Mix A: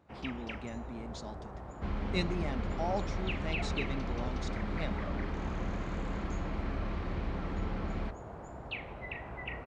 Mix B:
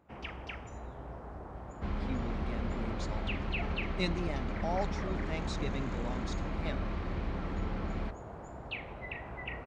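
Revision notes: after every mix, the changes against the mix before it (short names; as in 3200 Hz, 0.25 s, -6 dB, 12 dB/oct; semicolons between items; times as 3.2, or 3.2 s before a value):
speech: entry +1.85 s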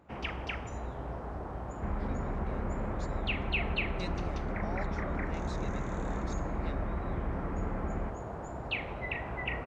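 speech -7.5 dB; first sound +5.5 dB; second sound: add LPF 2100 Hz 24 dB/oct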